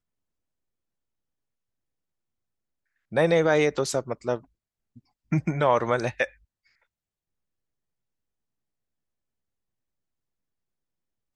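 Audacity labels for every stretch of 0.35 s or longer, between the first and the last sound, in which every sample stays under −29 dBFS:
4.370000	5.320000	silence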